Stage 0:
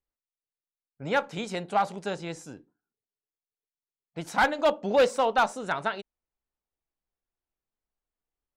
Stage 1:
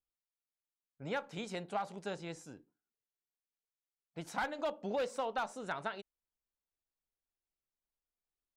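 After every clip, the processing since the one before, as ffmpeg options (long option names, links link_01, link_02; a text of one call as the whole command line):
ffmpeg -i in.wav -af "acompressor=threshold=-25dB:ratio=4,volume=-8dB" out.wav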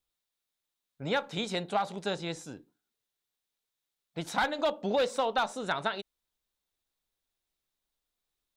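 ffmpeg -i in.wav -af "equalizer=frequency=3700:width=4.3:gain=8,volume=7.5dB" out.wav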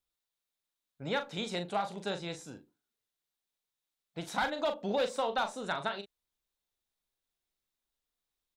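ffmpeg -i in.wav -filter_complex "[0:a]asplit=2[link_01][link_02];[link_02]adelay=40,volume=-8.5dB[link_03];[link_01][link_03]amix=inputs=2:normalize=0,volume=-3.5dB" out.wav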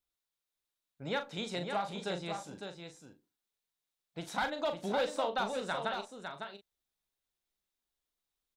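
ffmpeg -i in.wav -af "aecho=1:1:555:0.473,volume=-2dB" out.wav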